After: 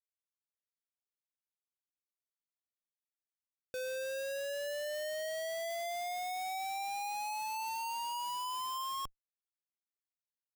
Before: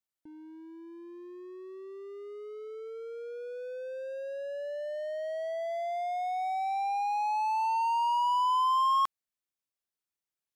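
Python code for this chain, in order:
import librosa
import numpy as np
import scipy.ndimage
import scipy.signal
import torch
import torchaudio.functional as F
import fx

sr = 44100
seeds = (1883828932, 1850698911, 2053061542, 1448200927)

y = fx.filter_sweep_highpass(x, sr, from_hz=770.0, to_hz=360.0, start_s=3.57, end_s=4.85, q=3.3)
y = fx.cheby_harmonics(y, sr, harmonics=(5,), levels_db=(-45,), full_scale_db=-19.5)
y = fx.schmitt(y, sr, flips_db=-35.0)
y = y * librosa.db_to_amplitude(-7.0)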